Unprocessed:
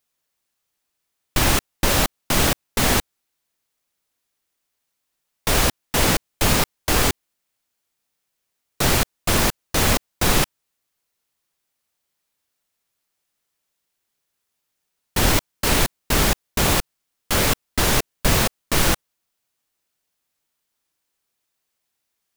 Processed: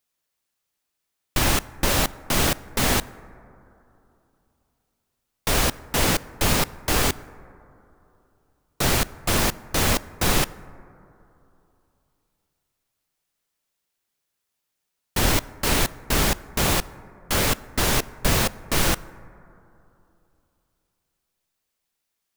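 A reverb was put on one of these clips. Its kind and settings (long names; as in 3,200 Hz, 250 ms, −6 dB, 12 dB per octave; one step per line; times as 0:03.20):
dense smooth reverb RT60 3 s, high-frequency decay 0.25×, DRR 18 dB
level −2.5 dB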